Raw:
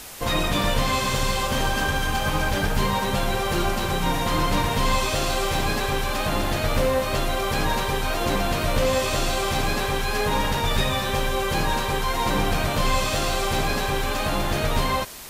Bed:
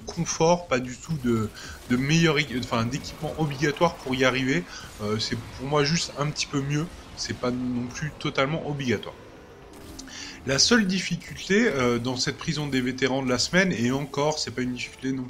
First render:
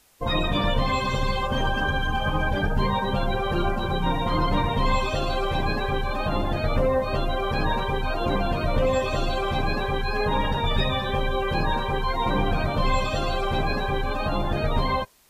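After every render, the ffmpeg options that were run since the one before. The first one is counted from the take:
-af "afftdn=nr=20:nf=-26"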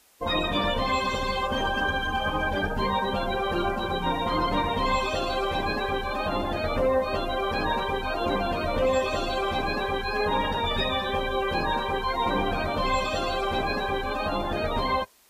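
-af "highpass=f=84:p=1,equalizer=f=130:w=2.3:g=-13"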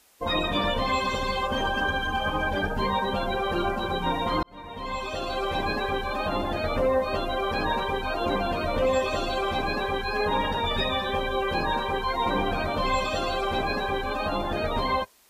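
-filter_complex "[0:a]asplit=2[a][b];[a]atrim=end=4.43,asetpts=PTS-STARTPTS,afade=t=out:st=4.426:d=0.004:c=hsin[c];[b]atrim=start=4.43,asetpts=PTS-STARTPTS,afade=t=in:d=1.16[d];[c][d]concat=n=2:v=0:a=1"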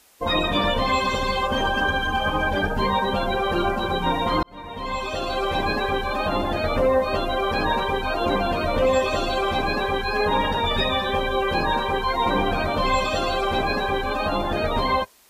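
-af "volume=4dB"

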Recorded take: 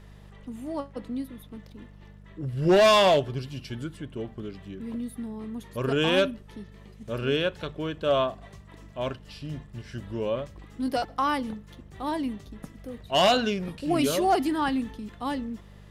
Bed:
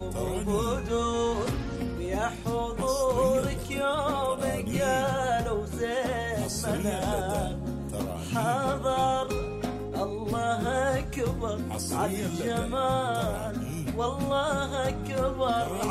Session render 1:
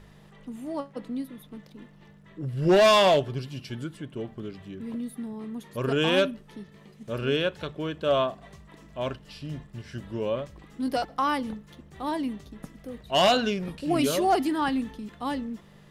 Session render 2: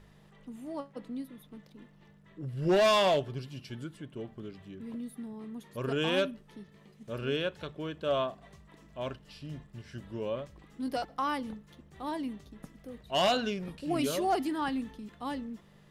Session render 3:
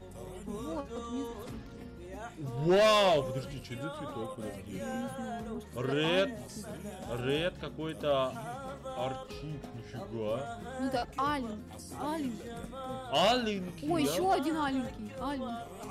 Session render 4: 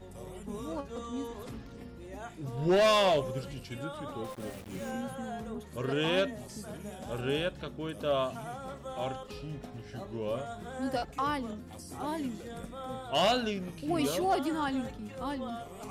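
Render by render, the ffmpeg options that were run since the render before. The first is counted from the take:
-af "bandreject=f=50:t=h:w=4,bandreject=f=100:t=h:w=4"
-af "volume=-6dB"
-filter_complex "[1:a]volume=-14.5dB[a];[0:a][a]amix=inputs=2:normalize=0"
-filter_complex "[0:a]asettb=1/sr,asplit=3[a][b][c];[a]atrim=end=4.244[d];[b]atrim=start=4.24:end=4.91,asetpts=PTS-STARTPTS,afade=t=in:d=0.004:c=qsin,afade=t=out:st=0.666:d=0.004:c=qsin,aeval=exprs='val(0)*gte(abs(val(0)),0.00596)':c=same[e];[c]atrim=start=4.906[f];[d][e]acrossfade=d=0.004:c1=hsin:c2=qsin[g];[g][f]acrossfade=d=0.004:c1=qsin:c2=hsin"

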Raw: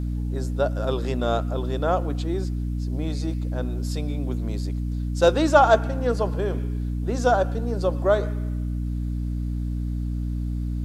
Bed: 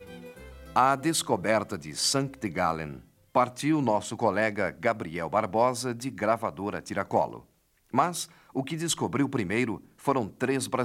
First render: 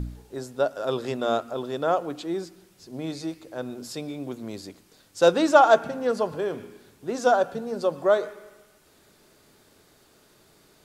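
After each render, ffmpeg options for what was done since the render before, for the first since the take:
-af "bandreject=f=60:t=h:w=4,bandreject=f=120:t=h:w=4,bandreject=f=180:t=h:w=4,bandreject=f=240:t=h:w=4,bandreject=f=300:t=h:w=4"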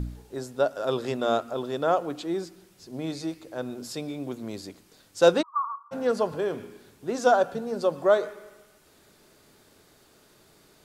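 -filter_complex "[0:a]asplit=3[a][b][c];[a]afade=t=out:st=5.41:d=0.02[d];[b]asuperpass=centerf=1100:order=8:qfactor=4.6,afade=t=in:st=5.41:d=0.02,afade=t=out:st=5.91:d=0.02[e];[c]afade=t=in:st=5.91:d=0.02[f];[d][e][f]amix=inputs=3:normalize=0"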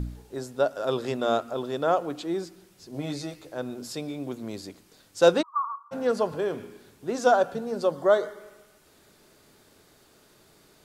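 -filter_complex "[0:a]asettb=1/sr,asplit=3[a][b][c];[a]atrim=end=2.934[d];[b]atrim=start=2.93:end=3.53,asetpts=PTS-STARTPTS,afade=t=in:d=0.004:c=qsin,afade=t=out:st=0.596:d=0.004:c=qsin,asplit=2[e][f];[f]adelay=14,volume=-4dB[g];[e][g]amix=inputs=2:normalize=0,atrim=end_sample=26460[h];[c]atrim=start=3.526[i];[d][h]acrossfade=d=0.004:c1=hsin:c2=qsin[j];[j][i]acrossfade=d=0.004:c1=qsin:c2=hsin,asettb=1/sr,asplit=3[k][l][m];[k]atrim=end=7.914[n];[l]atrim=start=7.91:end=8.4,asetpts=PTS-STARTPTS,afade=t=in:d=0.004:c=qsin,afade=t=out:st=0.486:d=0.004:c=qsin,asuperstop=centerf=2500:order=8:qfactor=5.4[o];[m]atrim=start=8.396[p];[n][o]acrossfade=d=0.004:c1=hsin:c2=qsin[q];[q][p]acrossfade=d=0.004:c1=qsin:c2=hsin"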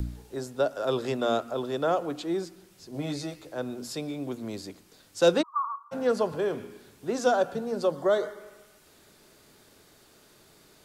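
-filter_complex "[0:a]acrossover=split=330|480|1800[a][b][c][d];[c]alimiter=limit=-22dB:level=0:latency=1:release=91[e];[d]acompressor=mode=upward:threshold=-56dB:ratio=2.5[f];[a][b][e][f]amix=inputs=4:normalize=0"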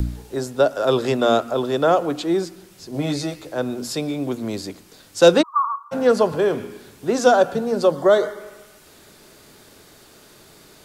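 -af "volume=9dB,alimiter=limit=-1dB:level=0:latency=1"

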